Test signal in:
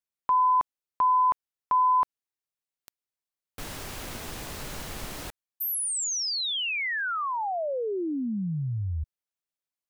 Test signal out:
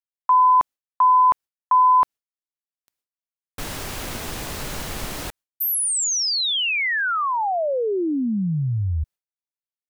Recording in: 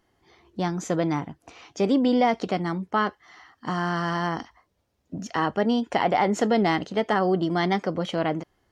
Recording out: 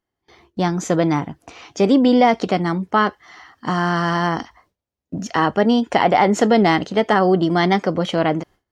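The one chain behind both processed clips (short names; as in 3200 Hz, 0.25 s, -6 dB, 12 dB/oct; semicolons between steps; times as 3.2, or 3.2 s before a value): gate with hold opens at -47 dBFS, closes at -51 dBFS, hold 86 ms, range -21 dB; gain +7 dB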